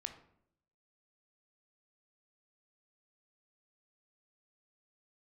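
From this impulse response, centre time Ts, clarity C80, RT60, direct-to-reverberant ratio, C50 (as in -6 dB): 12 ms, 13.0 dB, 0.70 s, 6.5 dB, 10.0 dB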